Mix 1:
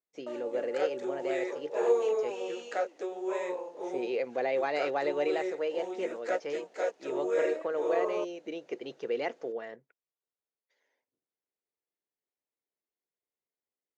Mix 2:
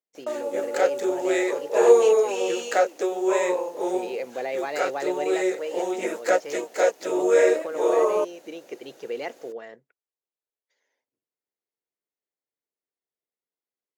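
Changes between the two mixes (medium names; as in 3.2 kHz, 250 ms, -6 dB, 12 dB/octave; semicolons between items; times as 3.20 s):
background +10.5 dB; master: remove distance through air 96 m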